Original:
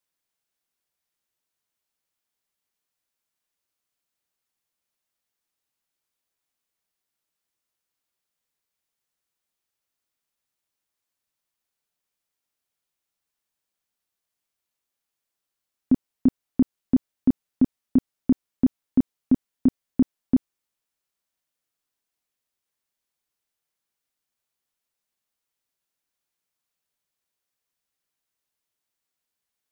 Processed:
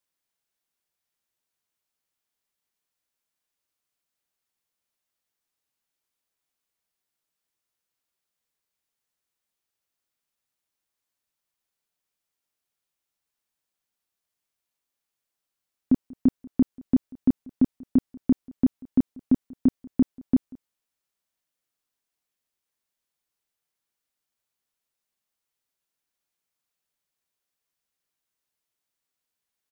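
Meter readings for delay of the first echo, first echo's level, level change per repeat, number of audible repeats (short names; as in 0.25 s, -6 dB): 0.188 s, -24.0 dB, no steady repeat, 1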